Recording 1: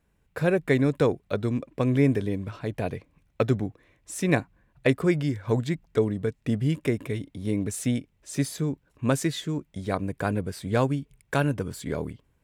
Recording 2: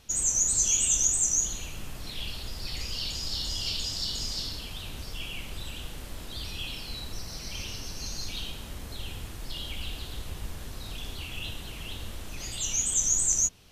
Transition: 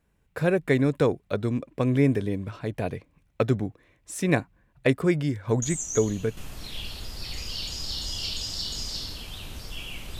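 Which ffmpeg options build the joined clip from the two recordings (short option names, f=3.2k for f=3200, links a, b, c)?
-filter_complex "[1:a]asplit=2[a][b];[0:a]apad=whole_dur=10.19,atrim=end=10.19,atrim=end=6.372[c];[b]atrim=start=1.798:end=5.62[d];[a]atrim=start=1.05:end=1.8,asetpts=PTS-STARTPTS,volume=-7.5dB,afade=t=in:d=0.004:c=hsin,afade=t=out:st=0.746:d=0.004:c=hsin,adelay=5620[e];[c][d]acrossfade=d=0.004:c1=hsin:c2=hsin[f];[f][e]amix=inputs=2:normalize=0"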